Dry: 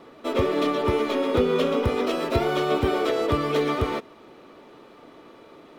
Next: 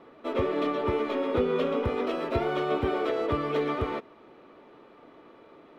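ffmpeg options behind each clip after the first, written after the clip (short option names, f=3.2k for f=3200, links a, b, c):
-af "bass=f=250:g=-2,treble=f=4k:g=-13,volume=-4dB"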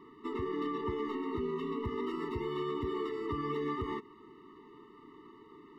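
-af "alimiter=level_in=1dB:limit=-24dB:level=0:latency=1:release=121,volume=-1dB,afftfilt=real='re*eq(mod(floor(b*sr/1024/440),2),0)':imag='im*eq(mod(floor(b*sr/1024/440),2),0)':win_size=1024:overlap=0.75"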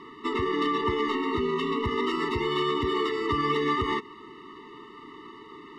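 -af "crystalizer=i=9.5:c=0,adynamicsmooth=sensitivity=2:basefreq=4.2k,volume=6.5dB"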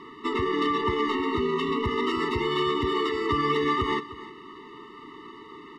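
-af "aecho=1:1:308:0.15,volume=1dB"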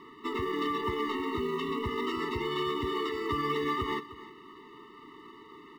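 -af "acrusher=bits=8:mode=log:mix=0:aa=0.000001,volume=-6dB"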